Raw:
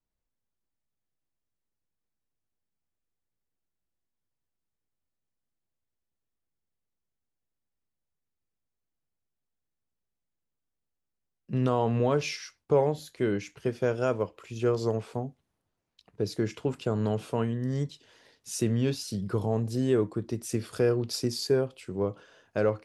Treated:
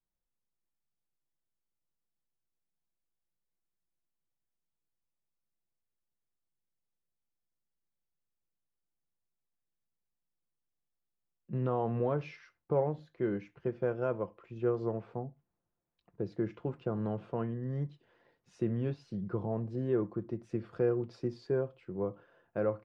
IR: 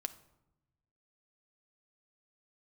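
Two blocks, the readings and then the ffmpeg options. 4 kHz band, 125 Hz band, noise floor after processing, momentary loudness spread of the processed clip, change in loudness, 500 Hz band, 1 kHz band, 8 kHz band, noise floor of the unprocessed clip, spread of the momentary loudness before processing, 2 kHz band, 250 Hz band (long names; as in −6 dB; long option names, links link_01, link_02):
below −20 dB, −6.0 dB, below −85 dBFS, 9 LU, −6.0 dB, −5.5 dB, −6.0 dB, below −30 dB, −85 dBFS, 9 LU, −9.5 dB, −5.5 dB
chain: -filter_complex "[0:a]lowpass=1600,aecho=1:1:5.8:0.31,asplit=2[link_01][link_02];[1:a]atrim=start_sample=2205,afade=type=out:start_time=0.16:duration=0.01,atrim=end_sample=7497[link_03];[link_02][link_03]afir=irnorm=-1:irlink=0,volume=-7dB[link_04];[link_01][link_04]amix=inputs=2:normalize=0,volume=-8.5dB"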